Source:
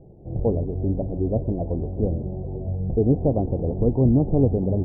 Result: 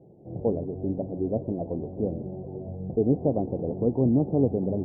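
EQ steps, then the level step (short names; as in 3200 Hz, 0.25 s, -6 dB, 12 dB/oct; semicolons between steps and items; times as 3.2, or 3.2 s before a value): HPF 160 Hz 12 dB/oct; air absorption 350 m; -1.5 dB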